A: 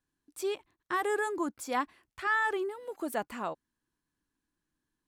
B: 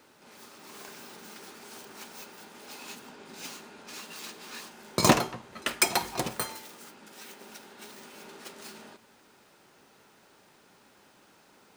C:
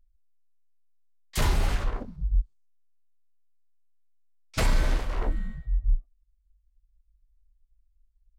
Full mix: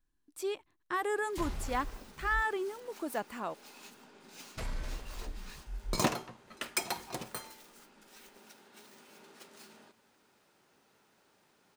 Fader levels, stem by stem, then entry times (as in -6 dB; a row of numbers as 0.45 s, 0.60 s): -2.5 dB, -9.0 dB, -15.0 dB; 0.00 s, 0.95 s, 0.00 s